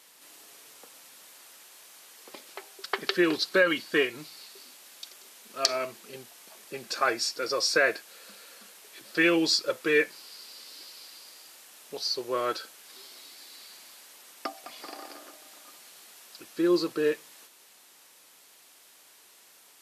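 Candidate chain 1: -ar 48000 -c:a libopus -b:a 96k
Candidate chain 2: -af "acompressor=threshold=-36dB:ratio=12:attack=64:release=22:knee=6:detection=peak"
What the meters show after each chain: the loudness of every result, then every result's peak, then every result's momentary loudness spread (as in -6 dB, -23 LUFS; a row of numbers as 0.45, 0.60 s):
-27.0, -35.0 LUFS; -5.0, -7.5 dBFS; 22, 22 LU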